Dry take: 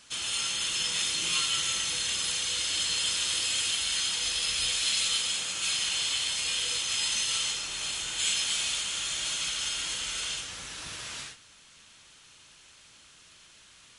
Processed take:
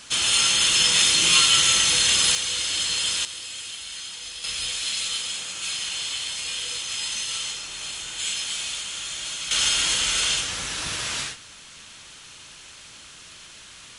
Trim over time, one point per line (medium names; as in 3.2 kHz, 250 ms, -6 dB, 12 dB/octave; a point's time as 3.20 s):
+11 dB
from 2.35 s +4 dB
from 3.25 s -6.5 dB
from 4.44 s 0 dB
from 9.51 s +10.5 dB